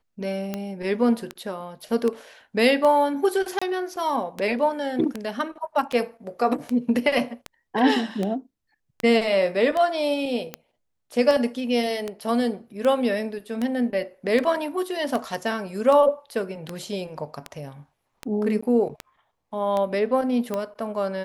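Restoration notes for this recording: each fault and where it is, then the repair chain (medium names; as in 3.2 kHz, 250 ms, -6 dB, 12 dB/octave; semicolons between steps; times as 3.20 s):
tick 78 rpm -14 dBFS
3.59–3.62 s: dropout 25 ms
18.61–18.62 s: dropout 15 ms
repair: de-click; interpolate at 3.59 s, 25 ms; interpolate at 18.61 s, 15 ms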